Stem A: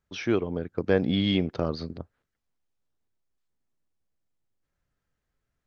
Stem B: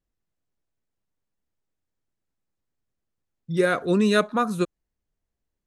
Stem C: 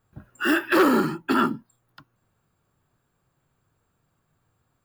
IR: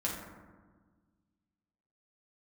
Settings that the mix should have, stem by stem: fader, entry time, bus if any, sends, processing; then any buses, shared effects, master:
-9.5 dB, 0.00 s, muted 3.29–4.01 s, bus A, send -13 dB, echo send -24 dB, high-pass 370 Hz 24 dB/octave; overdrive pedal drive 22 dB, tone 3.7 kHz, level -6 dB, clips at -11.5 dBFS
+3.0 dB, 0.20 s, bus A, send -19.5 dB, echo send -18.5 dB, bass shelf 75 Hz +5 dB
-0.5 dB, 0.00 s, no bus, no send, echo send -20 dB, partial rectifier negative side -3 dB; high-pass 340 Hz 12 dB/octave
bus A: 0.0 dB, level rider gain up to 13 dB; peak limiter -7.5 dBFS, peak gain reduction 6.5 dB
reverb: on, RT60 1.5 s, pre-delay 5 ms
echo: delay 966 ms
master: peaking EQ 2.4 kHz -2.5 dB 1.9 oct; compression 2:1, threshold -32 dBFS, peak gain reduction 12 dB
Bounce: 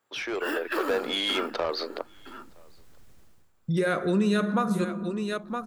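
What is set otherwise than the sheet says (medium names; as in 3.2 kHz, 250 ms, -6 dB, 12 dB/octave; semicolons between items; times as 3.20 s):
stem A: send off; stem B +3.0 dB -> +13.5 dB; master: missing peaking EQ 2.4 kHz -2.5 dB 1.9 oct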